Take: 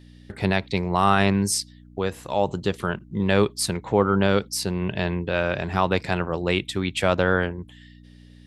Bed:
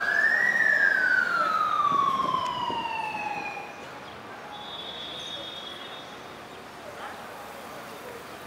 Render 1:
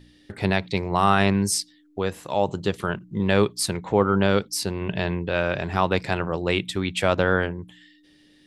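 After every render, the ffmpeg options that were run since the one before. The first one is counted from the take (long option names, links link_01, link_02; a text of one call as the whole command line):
ffmpeg -i in.wav -af "bandreject=frequency=60:width_type=h:width=4,bandreject=frequency=120:width_type=h:width=4,bandreject=frequency=180:width_type=h:width=4,bandreject=frequency=240:width_type=h:width=4" out.wav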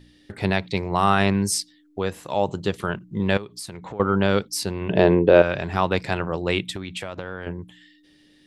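ffmpeg -i in.wav -filter_complex "[0:a]asettb=1/sr,asplit=3[link_01][link_02][link_03];[link_01]atrim=end=3.374[link_04];[link_02]atrim=start=3.37:end=4,asetpts=PTS-STARTPTS,afade=type=in:duration=0.004:curve=qsin,afade=type=out:start_time=0.626:duration=0.004:curve=qsin,acompressor=threshold=-32dB:ratio=6:attack=3.2:release=140:knee=1:detection=peak[link_05];[link_03]atrim=start=3.996[link_06];[link_04][link_05]acrossfade=duration=0.004:curve1=hsin:curve2=qsin[link_07];[link_07][link_06]acrossfade=duration=0.004:curve1=qsin:curve2=hsin,asettb=1/sr,asplit=3[link_08][link_09][link_10];[link_08]atrim=end=4.904[link_11];[link_09]atrim=start=4.9:end=5.42,asetpts=PTS-STARTPTS,afade=type=in:duration=0.004:curve=qsin,afade=type=out:start_time=0.516:duration=0.004:curve=qsin,equalizer=frequency=430:width=0.6:gain=15[link_12];[link_10]atrim=start=5.416[link_13];[link_11][link_12]acrossfade=duration=0.004:curve1=hsin:curve2=qsin[link_14];[link_14][link_13]acrossfade=duration=0.004:curve1=qsin:curve2=hsin,asettb=1/sr,asplit=3[link_15][link_16][link_17];[link_15]atrim=end=6.764[link_18];[link_16]atrim=start=6.76:end=7.47,asetpts=PTS-STARTPTS,afade=type=in:duration=0.004:curve=qsin,afade=type=out:start_time=0.706:duration=0.004:curve=qsin,acompressor=threshold=-27dB:ratio=12:attack=3.2:release=140:knee=1:detection=peak[link_19];[link_17]atrim=start=7.466[link_20];[link_18][link_19]acrossfade=duration=0.004:curve1=hsin:curve2=qsin[link_21];[link_21][link_20]acrossfade=duration=0.004:curve1=qsin:curve2=hsin" out.wav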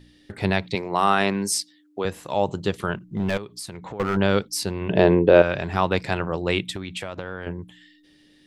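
ffmpeg -i in.wav -filter_complex "[0:a]asettb=1/sr,asplit=3[link_01][link_02][link_03];[link_01]atrim=end=0.754[link_04];[link_02]atrim=start=0.75:end=2.05,asetpts=PTS-STARTPTS,afade=type=in:duration=0.004:curve=qsin,afade=type=out:start_time=1.296:duration=0.004:curve=qsin,highpass=220[link_05];[link_03]atrim=start=2.046[link_06];[link_04][link_05]acrossfade=duration=0.004:curve1=hsin:curve2=qsin[link_07];[link_07][link_06]acrossfade=duration=0.004:curve1=qsin:curve2=hsin,asettb=1/sr,asplit=3[link_08][link_09][link_10];[link_08]atrim=end=3.054[link_11];[link_09]atrim=start=3.05:end=4.17,asetpts=PTS-STARTPTS,afade=type=in:duration=0.004:curve=qsin,afade=type=out:start_time=1.116:duration=0.004:curve=qsin,volume=18.5dB,asoftclip=hard,volume=-18.5dB[link_12];[link_10]atrim=start=4.166[link_13];[link_11][link_12]acrossfade=duration=0.004:curve1=hsin:curve2=qsin[link_14];[link_14][link_13]acrossfade=duration=0.004:curve1=qsin:curve2=hsin" out.wav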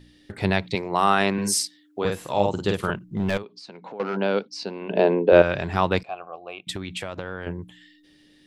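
ffmpeg -i in.wav -filter_complex "[0:a]asettb=1/sr,asplit=3[link_01][link_02][link_03];[link_01]atrim=end=1.334[link_04];[link_02]atrim=start=1.33:end=2.91,asetpts=PTS-STARTPTS,afade=type=in:duration=0.004:curve=qsin,afade=type=out:start_time=1.576:duration=0.004:curve=qsin,asplit=2[link_05][link_06];[link_06]adelay=49,volume=-3dB[link_07];[link_05][link_07]amix=inputs=2:normalize=0,atrim=end_sample=69678[link_08];[link_03]atrim=start=2.906[link_09];[link_04][link_08]acrossfade=duration=0.004:curve1=hsin:curve2=qsin[link_10];[link_10][link_09]acrossfade=duration=0.004:curve1=qsin:curve2=hsin,asplit=3[link_11][link_12][link_13];[link_11]afade=type=out:start_time=3.42:duration=0.02[link_14];[link_12]highpass=frequency=220:width=0.5412,highpass=frequency=220:width=1.3066,equalizer=frequency=330:width_type=q:width=4:gain=-6,equalizer=frequency=1200:width_type=q:width=4:gain=-6,equalizer=frequency=1900:width_type=q:width=4:gain=-8,equalizer=frequency=3400:width_type=q:width=4:gain=-7,lowpass=frequency=4700:width=0.5412,lowpass=frequency=4700:width=1.3066,afade=type=in:start_time=3.42:duration=0.02,afade=type=out:start_time=5.31:duration=0.02[link_15];[link_13]afade=type=in:start_time=5.31:duration=0.02[link_16];[link_14][link_15][link_16]amix=inputs=3:normalize=0,asettb=1/sr,asplit=3[link_17][link_18][link_19];[link_17]atrim=end=6.034[link_20];[link_18]atrim=start=6.03:end=6.67,asetpts=PTS-STARTPTS,afade=type=in:duration=0.004:curve=qsin,afade=type=out:start_time=0.636:duration=0.004:curve=qsin,asplit=3[link_21][link_22][link_23];[link_21]bandpass=frequency=730:width_type=q:width=8,volume=0dB[link_24];[link_22]bandpass=frequency=1090:width_type=q:width=8,volume=-6dB[link_25];[link_23]bandpass=frequency=2440:width_type=q:width=8,volume=-9dB[link_26];[link_24][link_25][link_26]amix=inputs=3:normalize=0[link_27];[link_19]atrim=start=6.666[link_28];[link_20][link_27]acrossfade=duration=0.004:curve1=hsin:curve2=qsin[link_29];[link_29][link_28]acrossfade=duration=0.004:curve1=qsin:curve2=hsin" out.wav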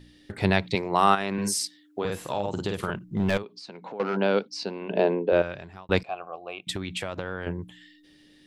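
ffmpeg -i in.wav -filter_complex "[0:a]asplit=3[link_01][link_02][link_03];[link_01]afade=type=out:start_time=1.14:duration=0.02[link_04];[link_02]acompressor=threshold=-23dB:ratio=6:attack=3.2:release=140:knee=1:detection=peak,afade=type=in:start_time=1.14:duration=0.02,afade=type=out:start_time=2.99:duration=0.02[link_05];[link_03]afade=type=in:start_time=2.99:duration=0.02[link_06];[link_04][link_05][link_06]amix=inputs=3:normalize=0,asplit=2[link_07][link_08];[link_07]atrim=end=5.89,asetpts=PTS-STARTPTS,afade=type=out:start_time=4.62:duration=1.27[link_09];[link_08]atrim=start=5.89,asetpts=PTS-STARTPTS,afade=type=in:duration=0.004:curve=hsin[link_10];[link_09][link_10]concat=n=2:v=0:a=1" out.wav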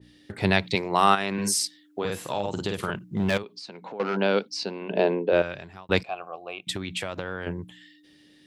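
ffmpeg -i in.wav -af "highpass=72,adynamicequalizer=threshold=0.0178:dfrequency=1700:dqfactor=0.7:tfrequency=1700:tqfactor=0.7:attack=5:release=100:ratio=0.375:range=2:mode=boostabove:tftype=highshelf" out.wav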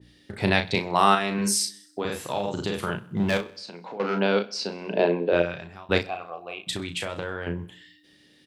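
ffmpeg -i in.wav -filter_complex "[0:a]asplit=2[link_01][link_02];[link_02]adelay=35,volume=-7dB[link_03];[link_01][link_03]amix=inputs=2:normalize=0,aecho=1:1:64|128|192|256|320:0.0891|0.0526|0.031|0.0183|0.0108" out.wav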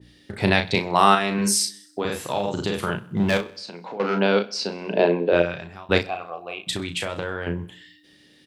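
ffmpeg -i in.wav -af "volume=3dB,alimiter=limit=-2dB:level=0:latency=1" out.wav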